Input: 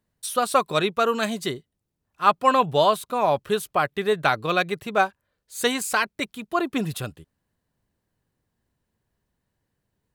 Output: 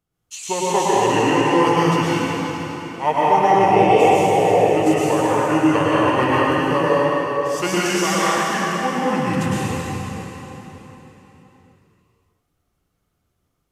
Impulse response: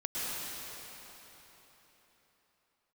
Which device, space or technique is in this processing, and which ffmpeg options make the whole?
slowed and reverbed: -filter_complex "[0:a]asetrate=32634,aresample=44100[s0];[1:a]atrim=start_sample=2205[s1];[s0][s1]afir=irnorm=-1:irlink=0"

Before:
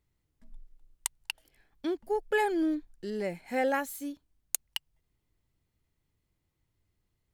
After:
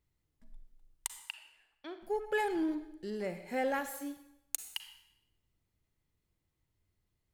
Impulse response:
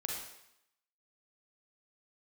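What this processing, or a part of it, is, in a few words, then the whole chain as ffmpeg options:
saturated reverb return: -filter_complex "[0:a]asettb=1/sr,asplit=3[s0][s1][s2];[s0]atrim=end=1.204[s3];[s1]atrim=start=1.2:end=2.01,asetpts=PTS-STARTPTS,afade=t=in:d=0.004:c=qsin,afade=t=out:st=0.806:d=0.004:c=qsin,acrossover=split=550 3900:gain=0.158 1 0.141[s4][s5][s6];[s4][s5][s6]amix=inputs=3:normalize=0[s7];[s2]atrim=start=2.006[s8];[s3][s7]acrossfade=d=0.004:c1=hsin:c2=qsin[s9];[s9][s8]acrossfade=d=0.004:c1=qsin:c2=hsin,asplit=2[s10][s11];[1:a]atrim=start_sample=2205[s12];[s11][s12]afir=irnorm=-1:irlink=0,asoftclip=type=tanh:threshold=0.0398,volume=0.562[s13];[s10][s13]amix=inputs=2:normalize=0,volume=0.473"

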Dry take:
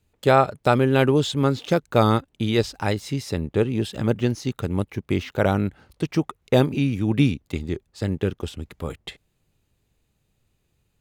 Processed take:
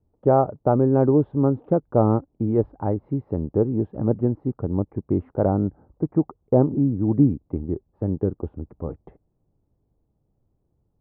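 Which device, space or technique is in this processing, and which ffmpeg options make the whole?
under water: -filter_complex "[0:a]asettb=1/sr,asplit=3[s0][s1][s2];[s0]atrim=end=5.504[s3];[s1]atrim=start=5.5:end=7.29,asetpts=PTS-STARTPTS,afade=t=in:d=0.004:c=qsin,afade=t=out:st=1.786:d=0.004:c=qsin,lowpass=f=2000:w=0.5412,lowpass=f=2000:w=1.3066[s4];[s2]atrim=start=7.286[s5];[s3][s4]acrossfade=d=0.004:c1=hsin:c2=qsin[s6];[s6][s5]acrossfade=d=0.004:c1=qsin:c2=hsin,lowpass=f=920:w=0.5412,lowpass=f=920:w=1.3066,equalizer=f=300:t=o:w=0.3:g=4"

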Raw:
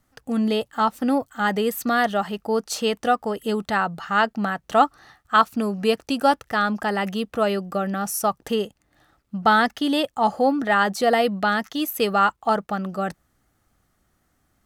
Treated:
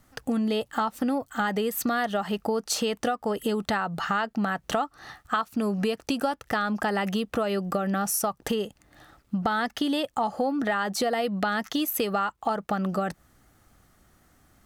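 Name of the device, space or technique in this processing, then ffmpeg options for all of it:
serial compression, peaks first: -af "acompressor=threshold=0.0501:ratio=4,acompressor=threshold=0.02:ratio=2,volume=2.24"

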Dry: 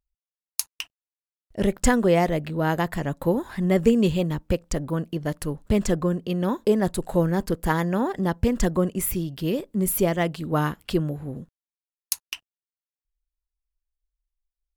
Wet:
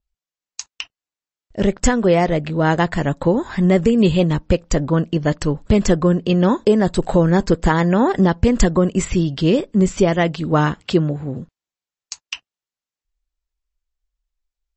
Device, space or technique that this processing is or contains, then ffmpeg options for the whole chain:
low-bitrate web radio: -filter_complex "[0:a]adynamicequalizer=threshold=0.00251:dfrequency=6700:dqfactor=3.4:tfrequency=6700:tqfactor=3.4:attack=5:release=100:ratio=0.375:range=4:mode=cutabove:tftype=bell,asettb=1/sr,asplit=3[s0][s1][s2];[s0]atrim=end=10.814[s3];[s1]atrim=start=10.81:end=11.38,asetpts=PTS-STARTPTS,afade=t=in:d=0.004:c=qsin,afade=t=out:st=0.566:d=0.004:c=qsin,highpass=f=71:w=0.5412,highpass=f=71:w=1.3066[s4];[s2]atrim=start=11.376[s5];[s3][s4]acrossfade=d=0.004:c1=hsin:c2=qsin[s6];[s6][s5]acrossfade=d=0.004:c1=qsin:c2=hsin,dynaudnorm=f=320:g=17:m=3.35,alimiter=limit=0.355:level=0:latency=1:release=246,volume=1.78" -ar 32000 -c:a libmp3lame -b:a 32k

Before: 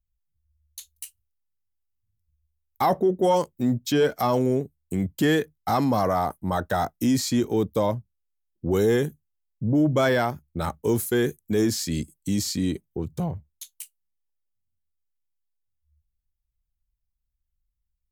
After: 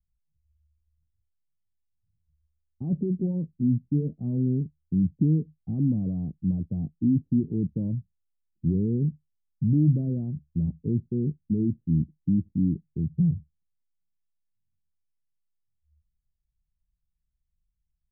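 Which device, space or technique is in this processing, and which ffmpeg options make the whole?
the neighbour's flat through the wall: -af "lowpass=f=270:w=0.5412,lowpass=f=270:w=1.3066,equalizer=f=160:t=o:w=0.51:g=8"

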